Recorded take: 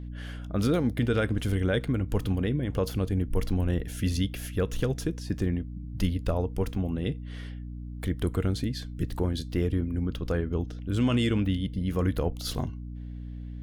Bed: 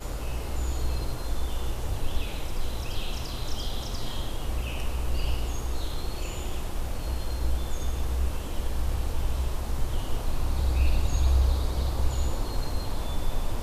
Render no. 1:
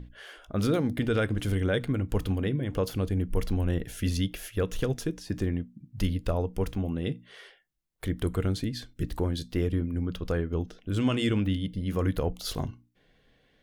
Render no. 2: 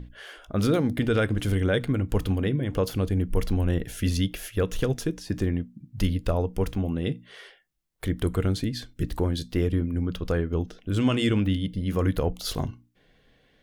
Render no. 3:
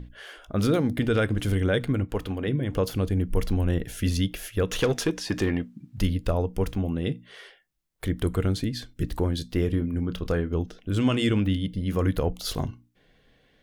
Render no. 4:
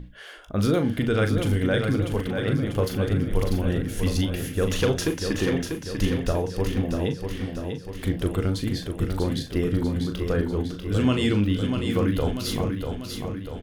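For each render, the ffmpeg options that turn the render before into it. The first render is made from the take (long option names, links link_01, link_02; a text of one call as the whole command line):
ffmpeg -i in.wav -af "bandreject=frequency=60:width_type=h:width=6,bandreject=frequency=120:width_type=h:width=6,bandreject=frequency=180:width_type=h:width=6,bandreject=frequency=240:width_type=h:width=6,bandreject=frequency=300:width_type=h:width=6" out.wav
ffmpeg -i in.wav -af "volume=3dB" out.wav
ffmpeg -i in.wav -filter_complex "[0:a]asettb=1/sr,asplit=3[link_01][link_02][link_03];[link_01]atrim=end=2.044[link_04];[link_02]atrim=start=2.04:end=2.48,asetpts=PTS-STARTPTS,afade=type=in:duration=0.004:curve=qsin,afade=type=out:start_time=0.436:duration=0.004:curve=qsin,bass=frequency=250:gain=-8,treble=frequency=4000:gain=-6[link_05];[link_03]atrim=start=2.476[link_06];[link_04][link_05]acrossfade=duration=0.004:curve1=hsin:curve2=qsin[link_07];[link_07][link_06]acrossfade=duration=0.004:curve1=qsin:curve2=hsin,asettb=1/sr,asplit=3[link_08][link_09][link_10];[link_08]atrim=end=4.714[link_11];[link_09]atrim=start=4.71:end=5.98,asetpts=PTS-STARTPTS,afade=type=in:duration=0.004:curve=qsin,afade=type=out:start_time=1.266:duration=0.004:curve=qsin,asplit=2[link_12][link_13];[link_13]highpass=frequency=720:poles=1,volume=17dB,asoftclip=type=tanh:threshold=-12.5dB[link_14];[link_12][link_14]amix=inputs=2:normalize=0,lowpass=frequency=4300:poles=1,volume=-6dB[link_15];[link_10]atrim=start=5.976[link_16];[link_11][link_15]acrossfade=duration=0.004:curve1=hsin:curve2=qsin[link_17];[link_17][link_16]acrossfade=duration=0.004:curve1=qsin:curve2=hsin,asettb=1/sr,asplit=3[link_18][link_19][link_20];[link_18]atrim=end=9.604[link_21];[link_19]atrim=start=9.6:end=10.56,asetpts=PTS-STARTPTS,afade=type=in:duration=0.004:curve=qsin,afade=type=out:start_time=0.956:duration=0.004:curve=qsin,asplit=2[link_22][link_23];[link_23]adelay=28,volume=-13dB[link_24];[link_22][link_24]amix=inputs=2:normalize=0,atrim=end_sample=42336[link_25];[link_20]atrim=start=10.556[link_26];[link_21][link_25]acrossfade=duration=0.004:curve1=hsin:curve2=qsin[link_27];[link_27][link_26]acrossfade=duration=0.004:curve1=qsin:curve2=hsin" out.wav
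ffmpeg -i in.wav -filter_complex "[0:a]asplit=2[link_01][link_02];[link_02]adelay=39,volume=-8dB[link_03];[link_01][link_03]amix=inputs=2:normalize=0,aecho=1:1:643|1286|1929|2572|3215|3858|4501:0.501|0.286|0.163|0.0928|0.0529|0.0302|0.0172" out.wav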